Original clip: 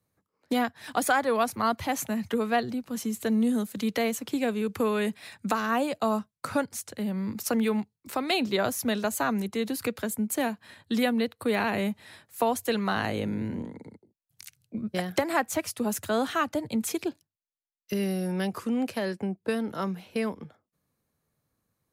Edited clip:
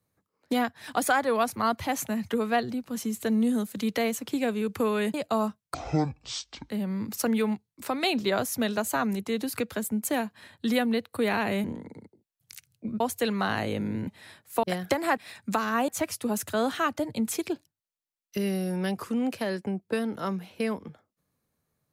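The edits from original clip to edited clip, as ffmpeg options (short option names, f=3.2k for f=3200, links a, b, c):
-filter_complex "[0:a]asplit=10[a][b][c][d][e][f][g][h][i][j];[a]atrim=end=5.142[k];[b]atrim=start=5.848:end=6.454[l];[c]atrim=start=6.45:end=6.97,asetpts=PTS-STARTPTS,asetrate=23814,aresample=44100[m];[d]atrim=start=6.966:end=11.912[n];[e]atrim=start=13.538:end=14.902[o];[f]atrim=start=12.468:end=13.542[p];[g]atrim=start=11.908:end=12.472[q];[h]atrim=start=14.898:end=15.442[r];[i]atrim=start=5.138:end=5.852[s];[j]atrim=start=15.438[t];[k][l]acrossfade=d=0.004:c1=hsin:c2=hsin[u];[u][m]acrossfade=d=0.004:c1=hsin:c2=hsin[v];[v][n]acrossfade=d=0.004:c1=hsin:c2=hsin[w];[w][o]acrossfade=d=0.004:c1=hsin:c2=hsin[x];[x][p]acrossfade=d=0.004:c1=hsin:c2=hsin[y];[y][q]acrossfade=d=0.004:c1=hsin:c2=hsin[z];[z][r]acrossfade=d=0.004:c1=hsin:c2=hsin[aa];[aa][s]acrossfade=d=0.004:c1=hsin:c2=hsin[ab];[ab][t]acrossfade=d=0.004:c1=hsin:c2=hsin"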